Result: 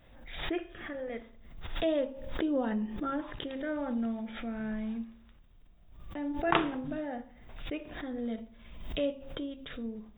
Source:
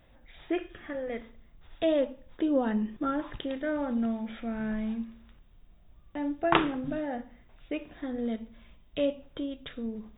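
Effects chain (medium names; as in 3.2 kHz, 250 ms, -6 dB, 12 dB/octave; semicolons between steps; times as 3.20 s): de-hum 67.47 Hz, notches 16; swell ahead of each attack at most 60 dB/s; trim -3.5 dB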